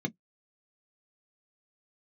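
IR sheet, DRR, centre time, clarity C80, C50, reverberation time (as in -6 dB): 4.5 dB, 4 ms, 50.5 dB, 32.0 dB, 0.05 s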